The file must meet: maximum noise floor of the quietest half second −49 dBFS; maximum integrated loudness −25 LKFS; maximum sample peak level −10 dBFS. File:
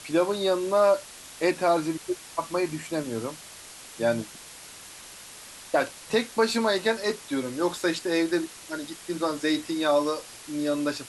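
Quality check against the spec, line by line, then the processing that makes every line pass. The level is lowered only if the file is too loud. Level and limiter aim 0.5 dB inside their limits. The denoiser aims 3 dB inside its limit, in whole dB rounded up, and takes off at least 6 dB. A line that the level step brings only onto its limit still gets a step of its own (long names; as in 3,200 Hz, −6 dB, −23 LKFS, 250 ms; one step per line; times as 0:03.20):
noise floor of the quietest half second −45 dBFS: out of spec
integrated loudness −27.0 LKFS: in spec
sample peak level −9.0 dBFS: out of spec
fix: broadband denoise 7 dB, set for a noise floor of −45 dBFS
brickwall limiter −10.5 dBFS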